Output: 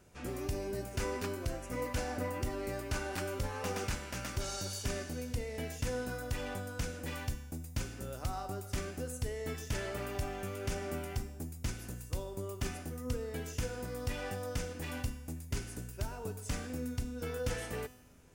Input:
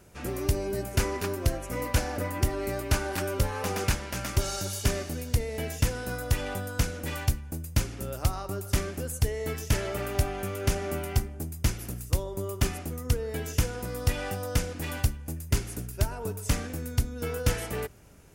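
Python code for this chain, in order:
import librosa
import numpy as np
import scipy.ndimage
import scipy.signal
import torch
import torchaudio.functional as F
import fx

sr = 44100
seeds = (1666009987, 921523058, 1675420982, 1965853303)

p1 = fx.over_compress(x, sr, threshold_db=-27.0, ratio=-1.0)
p2 = x + (p1 * 10.0 ** (-1.0 / 20.0))
p3 = fx.peak_eq(p2, sr, hz=12000.0, db=-9.5, octaves=0.29)
y = fx.comb_fb(p3, sr, f0_hz=250.0, decay_s=1.0, harmonics='all', damping=0.0, mix_pct=80)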